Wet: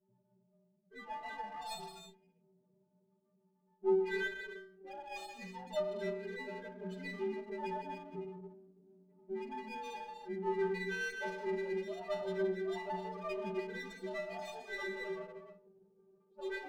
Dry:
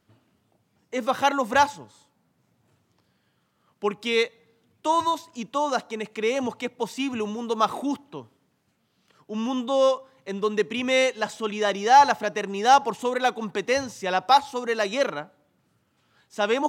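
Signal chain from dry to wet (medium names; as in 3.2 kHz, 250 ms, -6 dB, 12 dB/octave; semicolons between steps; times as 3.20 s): frequency axis rescaled in octaves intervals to 86%; level-controlled noise filter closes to 830 Hz, open at -19 dBFS; reverse; compression 12:1, threshold -32 dBFS, peak gain reduction 21 dB; reverse; peaking EQ 3.8 kHz +4.5 dB 1 oct; inharmonic resonator 180 Hz, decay 0.69 s, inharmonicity 0.03; loudest bins only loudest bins 8; on a send: bucket-brigade echo 322 ms, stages 1024, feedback 77%, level -21.5 dB; on the sum: gated-style reverb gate 350 ms flat, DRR 2.5 dB; sliding maximum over 5 samples; trim +13 dB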